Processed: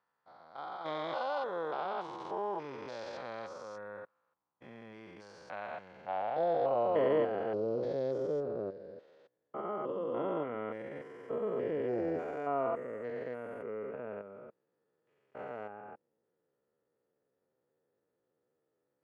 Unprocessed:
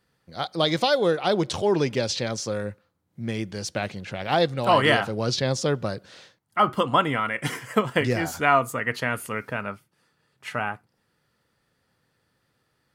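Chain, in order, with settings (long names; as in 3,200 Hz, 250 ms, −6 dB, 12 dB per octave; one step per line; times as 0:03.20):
spectrum averaged block by block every 200 ms
band-pass filter sweep 1,000 Hz → 450 Hz, 0:03.85–0:04.88
tempo change 0.68×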